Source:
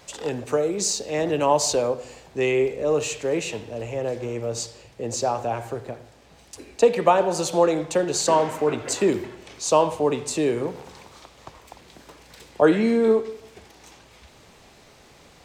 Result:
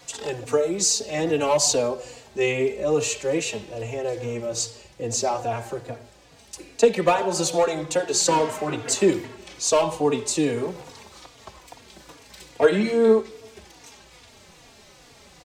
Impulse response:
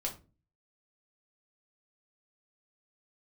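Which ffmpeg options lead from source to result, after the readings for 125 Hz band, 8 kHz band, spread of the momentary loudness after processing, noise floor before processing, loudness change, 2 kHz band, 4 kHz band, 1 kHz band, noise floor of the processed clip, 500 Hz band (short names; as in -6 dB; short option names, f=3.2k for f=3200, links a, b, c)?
0.0 dB, +4.0 dB, 15 LU, -52 dBFS, 0.0 dB, +1.5 dB, +3.0 dB, -2.0 dB, -51 dBFS, -0.5 dB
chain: -filter_complex "[0:a]equalizer=f=6.5k:w=0.48:g=4.5,acrossover=split=700|1100[a][b][c];[b]aeval=exprs='0.0596*(abs(mod(val(0)/0.0596+3,4)-2)-1)':c=same[d];[a][d][c]amix=inputs=3:normalize=0,asplit=2[e][f];[f]adelay=3.6,afreqshift=-2.4[g];[e][g]amix=inputs=2:normalize=1,volume=2.5dB"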